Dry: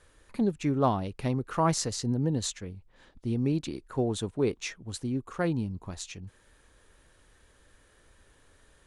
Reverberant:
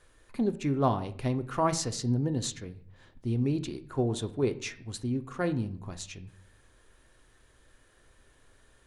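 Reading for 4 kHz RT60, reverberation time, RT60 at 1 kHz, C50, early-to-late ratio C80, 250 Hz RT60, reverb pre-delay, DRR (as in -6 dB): 0.45 s, 0.55 s, 0.55 s, 15.5 dB, 19.0 dB, 0.75 s, 3 ms, 9.0 dB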